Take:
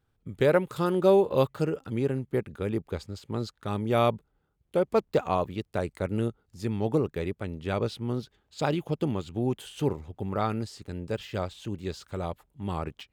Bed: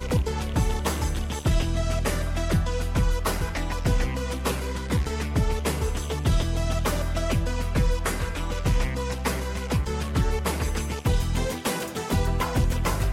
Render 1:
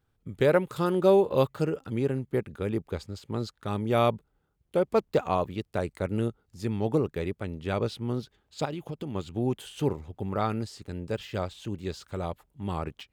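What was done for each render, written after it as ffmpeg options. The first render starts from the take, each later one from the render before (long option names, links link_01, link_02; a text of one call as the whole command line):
ffmpeg -i in.wav -filter_complex "[0:a]asplit=3[link_01][link_02][link_03];[link_01]afade=type=out:start_time=8.64:duration=0.02[link_04];[link_02]acompressor=threshold=-32dB:ratio=4:attack=3.2:release=140:knee=1:detection=peak,afade=type=in:start_time=8.64:duration=0.02,afade=type=out:start_time=9.14:duration=0.02[link_05];[link_03]afade=type=in:start_time=9.14:duration=0.02[link_06];[link_04][link_05][link_06]amix=inputs=3:normalize=0" out.wav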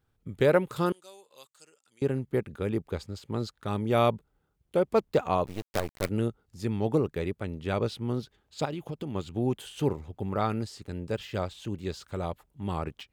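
ffmpeg -i in.wav -filter_complex "[0:a]asettb=1/sr,asplit=3[link_01][link_02][link_03];[link_01]atrim=end=0.924[link_04];[link_02]atrim=start=0.92:end=2.02,asetpts=PTS-STARTPTS,afade=type=in:duration=0.004:curve=qsin,afade=type=out:start_time=1.096:duration=0.004:curve=qsin,bandpass=frequency=7700:width_type=q:width=2.3[link_05];[link_03]atrim=start=2.016[link_06];[link_04][link_05]acrossfade=duration=0.004:curve1=hsin:curve2=qsin[link_07];[link_07][link_06]acrossfade=duration=0.004:curve1=qsin:curve2=hsin,asettb=1/sr,asplit=3[link_08][link_09][link_10];[link_08]atrim=end=5.464[link_11];[link_09]atrim=start=5.46:end=6.09,asetpts=PTS-STARTPTS,afade=type=in:duration=0.004:curve=qsin,afade=type=out:start_time=0.626:duration=0.004:curve=qsin,acrusher=bits=5:dc=4:mix=0:aa=0.000001[link_12];[link_10]atrim=start=6.086[link_13];[link_11][link_12]acrossfade=duration=0.004:curve1=hsin:curve2=qsin[link_14];[link_14][link_13]acrossfade=duration=0.004:curve1=qsin:curve2=hsin" out.wav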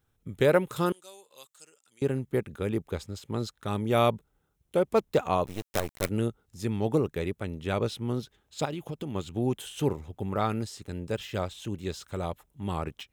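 ffmpeg -i in.wav -af "highshelf=frequency=4100:gain=6,bandreject=frequency=4600:width=9.2" out.wav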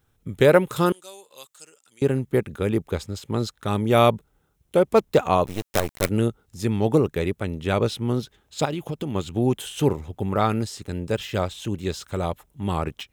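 ffmpeg -i in.wav -af "volume=6.5dB" out.wav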